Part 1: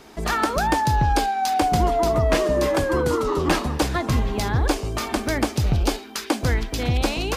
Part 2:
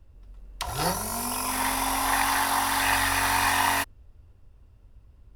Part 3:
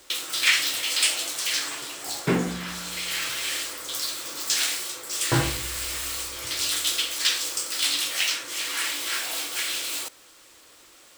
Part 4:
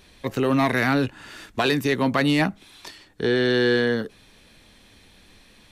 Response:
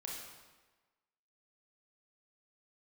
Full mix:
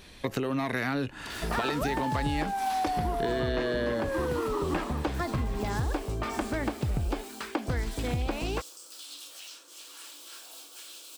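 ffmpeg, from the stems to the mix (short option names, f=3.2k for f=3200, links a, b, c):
-filter_complex "[0:a]lowpass=2.6k,adelay=1250,volume=-4dB[a];[1:a]alimiter=limit=-16.5dB:level=0:latency=1:release=201,adelay=650,volume=-14.5dB[b];[2:a]highpass=f=210:w=0.5412,highpass=f=210:w=1.3066,equalizer=f=2k:t=o:w=0.53:g=-14.5,alimiter=limit=-17dB:level=0:latency=1:release=70,adelay=1200,volume=-16dB[c];[3:a]acompressor=threshold=-23dB:ratio=6,volume=2dB,asplit=2[d][e];[e]apad=whole_len=264944[f];[b][f]sidechaincompress=threshold=-32dB:ratio=8:attack=16:release=214[g];[a][g][c][d]amix=inputs=4:normalize=0,acompressor=threshold=-26dB:ratio=5"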